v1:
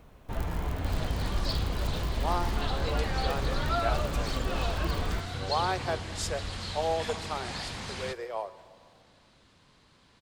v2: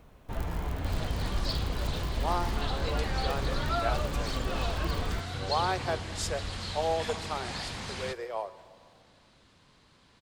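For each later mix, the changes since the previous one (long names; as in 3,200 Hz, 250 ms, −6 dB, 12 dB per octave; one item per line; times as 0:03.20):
first sound: send off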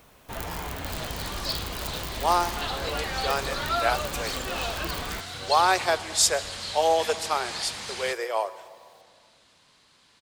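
speech +9.0 dB
first sound +4.5 dB
master: add spectral tilt +2.5 dB per octave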